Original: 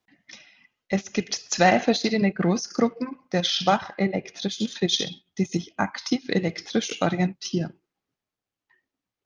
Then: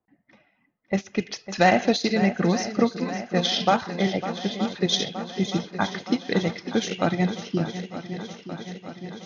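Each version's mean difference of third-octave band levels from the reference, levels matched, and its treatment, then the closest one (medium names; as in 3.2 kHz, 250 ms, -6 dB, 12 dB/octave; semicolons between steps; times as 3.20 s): 5.5 dB: level-controlled noise filter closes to 970 Hz, open at -17.5 dBFS; shuffle delay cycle 921 ms, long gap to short 1.5:1, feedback 65%, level -12.5 dB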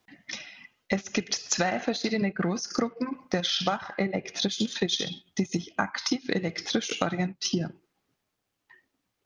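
3.5 dB: dynamic bell 1.4 kHz, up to +5 dB, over -41 dBFS, Q 1.8; compression 8:1, threshold -32 dBFS, peak gain reduction 20 dB; trim +8 dB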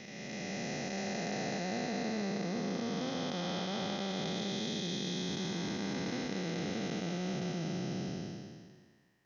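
12.5 dB: spectral blur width 1190 ms; reverse; compression 6:1, threshold -42 dBFS, peak gain reduction 15.5 dB; reverse; trim +8 dB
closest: second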